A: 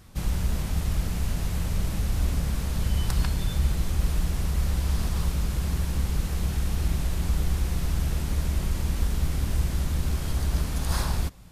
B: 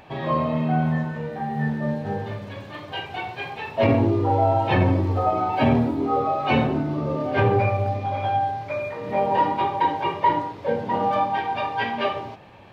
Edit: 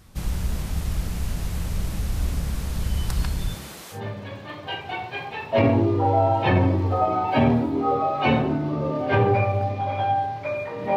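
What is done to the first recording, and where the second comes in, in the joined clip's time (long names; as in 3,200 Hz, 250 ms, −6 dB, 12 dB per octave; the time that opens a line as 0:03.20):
A
0:03.54–0:04.01: high-pass filter 180 Hz → 750 Hz
0:03.96: continue with B from 0:02.21, crossfade 0.10 s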